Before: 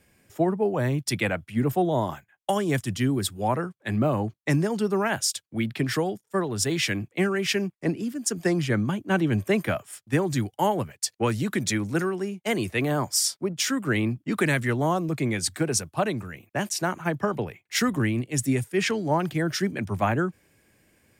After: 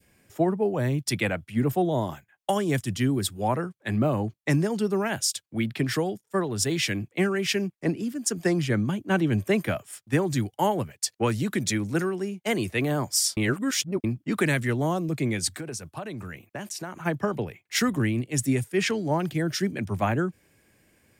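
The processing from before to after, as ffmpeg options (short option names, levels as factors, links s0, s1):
-filter_complex "[0:a]asettb=1/sr,asplit=3[s0][s1][s2];[s0]atrim=end=15.574[s3];[s1]atrim=start=15.57:end=17.04,asetpts=PTS-STARTPTS,afade=t=in:d=0.004:c=qsin,afade=t=out:st=1.466:d=0.004:c=qsin,acompressor=threshold=0.0282:ratio=8:attack=3.2:release=140:knee=1:detection=peak[s4];[s2]atrim=start=17.036[s5];[s3][s4]acrossfade=d=0.004:c1=hsin:c2=qsin[s6];[s6][s5]acrossfade=d=0.004:c1=qsin:c2=hsin,asplit=3[s7][s8][s9];[s7]atrim=end=13.372[s10];[s8]atrim=start=13.368:end=14.042,asetpts=PTS-STARTPTS,areverse[s11];[s9]atrim=start=14.038[s12];[s10][s11]acrossfade=d=0.004:c1=hsin:c2=hsin[s13];[s13][s12]acrossfade=d=0.004:c1=hsin:c2=hsin,adynamicequalizer=threshold=0.0112:dfrequency=1100:dqfactor=0.85:tfrequency=1100:tqfactor=0.85:attack=5:release=100:ratio=0.375:range=3.5:mode=cutabove:tftype=bell"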